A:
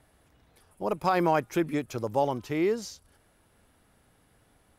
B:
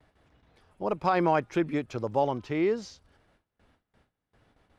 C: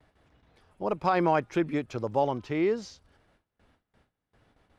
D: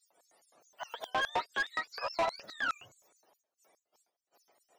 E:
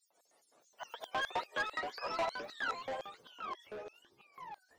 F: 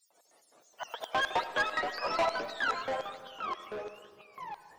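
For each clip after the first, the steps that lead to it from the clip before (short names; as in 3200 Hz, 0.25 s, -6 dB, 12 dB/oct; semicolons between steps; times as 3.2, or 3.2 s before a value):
LPF 4500 Hz 12 dB/oct; gate with hold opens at -54 dBFS
nothing audible
spectrum mirrored in octaves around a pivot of 750 Hz; LFO high-pass square 4.8 Hz 600–6300 Hz; soft clip -26 dBFS, distortion -7 dB
echoes that change speed 0.122 s, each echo -4 st, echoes 2, each echo -6 dB; gain -4 dB
digital reverb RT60 1.8 s, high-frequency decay 0.4×, pre-delay 40 ms, DRR 11.5 dB; gain +6 dB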